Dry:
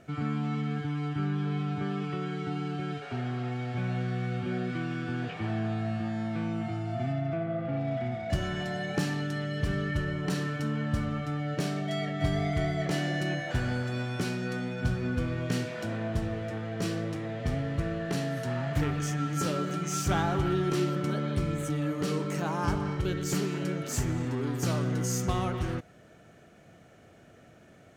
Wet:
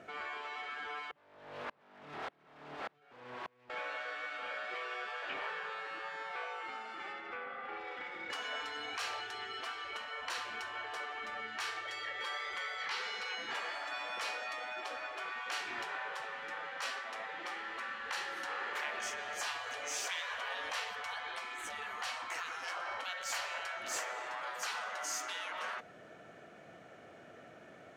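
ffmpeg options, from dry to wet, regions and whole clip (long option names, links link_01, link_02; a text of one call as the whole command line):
ffmpeg -i in.wav -filter_complex "[0:a]asettb=1/sr,asplit=3[link_01][link_02][link_03];[link_01]atrim=end=1.114[link_04];[link_02]atrim=start=1.11:end=3.7,asetpts=PTS-STARTPTS,afade=type=in:duration=0.004:curve=qsin,afade=type=out:start_time=2.586:duration=0.004:curve=qsin,aeval=exprs='0.0211*(abs(mod(val(0)/0.0211+3,4)-2)-1)':channel_layout=same,aeval=exprs='val(0)*pow(10,-37*if(lt(mod(-1.7*n/s,1),2*abs(-1.7)/1000),1-mod(-1.7*n/s,1)/(2*abs(-1.7)/1000),(mod(-1.7*n/s,1)-2*abs(-1.7)/1000)/(1-2*abs(-1.7)/1000))/20)':channel_layout=same[link_05];[link_03]atrim=start=3.696[link_06];[link_04][link_05]acrossfade=duration=0.004:curve1=hsin:curve2=qsin[link_07];[link_07][link_06]acrossfade=duration=0.004:curve1=qsin:curve2=hsin,asettb=1/sr,asplit=3[link_08][link_09][link_10];[link_08]atrim=end=12.784[link_11];[link_09]atrim=start=12.78:end=13.54,asetpts=PTS-STARTPTS,afade=type=in:duration=0.004:curve=qsin,afade=type=out:start_time=0.756:duration=0.004:curve=qsin,highpass=frequency=150:width=0.5412,highpass=frequency=150:width=1.3066,acrossover=split=4800[link_12][link_13];[link_13]acompressor=threshold=-53dB:ratio=4:attack=1:release=60[link_14];[link_12][link_14]amix=inputs=2:normalize=0,equalizer=frequency=4700:width=2.1:gain=5[link_15];[link_10]atrim=start=13.536[link_16];[link_11][link_15]acrossfade=duration=0.004:curve1=hsin:curve2=qsin[link_17];[link_17][link_16]acrossfade=duration=0.004:curve1=qsin:curve2=hsin,lowpass=frequency=1700:poles=1,afftfilt=real='re*lt(hypot(re,im),0.0355)':imag='im*lt(hypot(re,im),0.0355)':win_size=1024:overlap=0.75,highpass=frequency=750:poles=1,volume=7.5dB" out.wav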